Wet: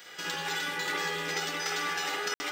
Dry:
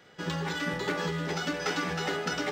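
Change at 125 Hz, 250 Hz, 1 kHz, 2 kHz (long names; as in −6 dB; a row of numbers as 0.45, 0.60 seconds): −13.0, −10.5, 0.0, +1.5 decibels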